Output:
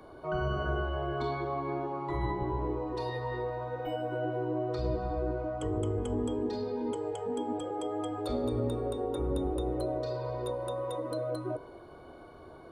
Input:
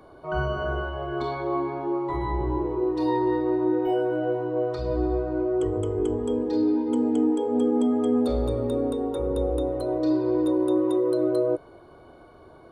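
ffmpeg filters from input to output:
-filter_complex "[0:a]afftfilt=real='re*lt(hypot(re,im),0.355)':imag='im*lt(hypot(re,im),0.355)':win_size=1024:overlap=0.75,bandreject=f=54.92:t=h:w=4,bandreject=f=109.84:t=h:w=4,bandreject=f=164.76:t=h:w=4,bandreject=f=219.68:t=h:w=4,bandreject=f=274.6:t=h:w=4,bandreject=f=329.52:t=h:w=4,bandreject=f=384.44:t=h:w=4,bandreject=f=439.36:t=h:w=4,bandreject=f=494.28:t=h:w=4,bandreject=f=549.2:t=h:w=4,bandreject=f=604.12:t=h:w=4,bandreject=f=659.04:t=h:w=4,bandreject=f=713.96:t=h:w=4,bandreject=f=768.88:t=h:w=4,bandreject=f=823.8:t=h:w=4,bandreject=f=878.72:t=h:w=4,bandreject=f=933.64:t=h:w=4,bandreject=f=988.56:t=h:w=4,bandreject=f=1.04348k:t=h:w=4,bandreject=f=1.0984k:t=h:w=4,bandreject=f=1.15332k:t=h:w=4,bandreject=f=1.20824k:t=h:w=4,bandreject=f=1.26316k:t=h:w=4,bandreject=f=1.31808k:t=h:w=4,bandreject=f=1.373k:t=h:w=4,bandreject=f=1.42792k:t=h:w=4,bandreject=f=1.48284k:t=h:w=4,bandreject=f=1.53776k:t=h:w=4,bandreject=f=1.59268k:t=h:w=4,acrossover=split=280[a][b];[b]acompressor=threshold=-34dB:ratio=2[c];[a][c]amix=inputs=2:normalize=0"

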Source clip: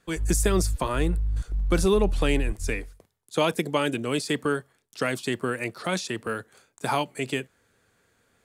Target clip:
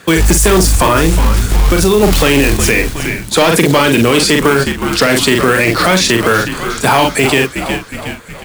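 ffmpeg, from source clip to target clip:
-filter_complex "[0:a]bass=f=250:g=-1,treble=f=4k:g=-8,asettb=1/sr,asplit=3[a][b][c];[a]atrim=end=0.964[d];[b]atrim=start=0.96:end=2.03,asetpts=PTS-STARTPTS,afade=t=in:d=0.004:c=qsin,afade=t=out:st=1.066:d=0.004:c=qsin,acompressor=threshold=-29dB:ratio=4[e];[c]atrim=start=2.026[f];[d][e]acrossfade=d=0.004:c1=hsin:c2=qsin[g];[g][f]acrossfade=d=0.004:c1=qsin:c2=hsin,acrusher=bits=5:mode=log:mix=0:aa=0.000001,highpass=f=55:w=0.5412,highpass=f=55:w=1.3066,asoftclip=type=tanh:threshold=-20.5dB,highshelf=f=2.4k:g=7,asplit=2[h][i];[i]adelay=43,volume=-7dB[j];[h][j]amix=inputs=2:normalize=0,asplit=2[k][l];[l]asplit=5[m][n][o][p][q];[m]adelay=365,afreqshift=-80,volume=-16dB[r];[n]adelay=730,afreqshift=-160,volume=-21.5dB[s];[o]adelay=1095,afreqshift=-240,volume=-27dB[t];[p]adelay=1460,afreqshift=-320,volume=-32.5dB[u];[q]adelay=1825,afreqshift=-400,volume=-38.1dB[v];[r][s][t][u][v]amix=inputs=5:normalize=0[w];[k][w]amix=inputs=2:normalize=0,alimiter=level_in=27dB:limit=-1dB:release=50:level=0:latency=1,volume=-1dB"

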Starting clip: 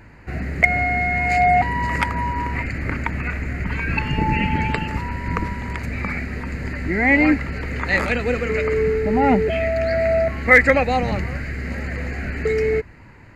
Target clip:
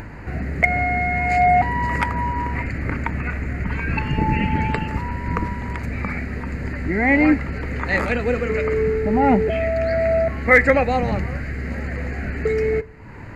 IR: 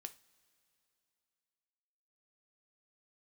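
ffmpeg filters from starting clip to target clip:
-filter_complex "[0:a]acompressor=mode=upward:threshold=-26dB:ratio=2.5,asplit=2[a][b];[1:a]atrim=start_sample=2205,lowpass=2.2k[c];[b][c]afir=irnorm=-1:irlink=0,volume=1.5dB[d];[a][d]amix=inputs=2:normalize=0,volume=-3.5dB"

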